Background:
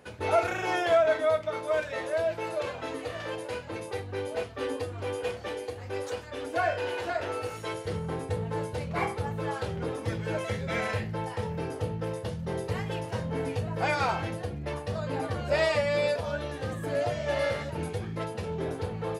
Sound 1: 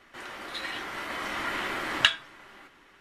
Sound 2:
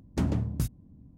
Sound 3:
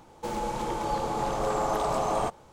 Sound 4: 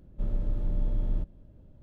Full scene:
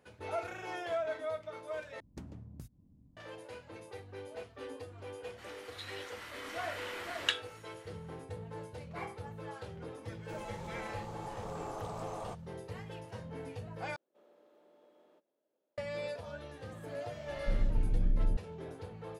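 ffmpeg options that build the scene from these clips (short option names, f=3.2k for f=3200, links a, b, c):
-filter_complex "[4:a]asplit=2[a][b];[0:a]volume=-12.5dB[c];[2:a]acompressor=threshold=-36dB:ratio=8:attack=40:release=196:knee=1:detection=rms[d];[1:a]highshelf=f=2.2k:g=8.5[e];[a]highpass=f=410:w=0.5412,highpass=f=410:w=1.3066[f];[b]acrossover=split=600[g][h];[g]adelay=730[i];[i][h]amix=inputs=2:normalize=0[j];[c]asplit=3[k][l][m];[k]atrim=end=2.004[n];[d]atrim=end=1.17,asetpts=PTS-STARTPTS,volume=-10dB[o];[l]atrim=start=3.166:end=13.964[p];[f]atrim=end=1.82,asetpts=PTS-STARTPTS,volume=-14dB[q];[m]atrim=start=15.776[r];[e]atrim=end=3,asetpts=PTS-STARTPTS,volume=-15dB,afade=t=in:d=0.004:c=hsin,afade=t=out:st=2.996:d=0.004:c=hsin,adelay=5240[s];[3:a]atrim=end=2.52,asetpts=PTS-STARTPTS,volume=-15.5dB,afade=t=in:d=0.004:c=hsin,afade=t=out:st=2.516:d=0.004:c=hsin,adelay=10050[t];[j]atrim=end=1.82,asetpts=PTS-STARTPTS,volume=-1dB,afade=t=in:d=0.004:c=hsin,afade=t=out:st=1.816:d=0.004:c=hsin,adelay=16550[u];[n][o]acrossfade=d=0.004:c1=hsin:c2=hsin[v];[v][p]acrossfade=d=0.004:c1=hsin:c2=hsin[w];[w][q]acrossfade=d=0.004:c1=hsin:c2=hsin[x];[x][r]acrossfade=d=0.004:c1=hsin:c2=hsin[y];[y][s][t][u]amix=inputs=4:normalize=0"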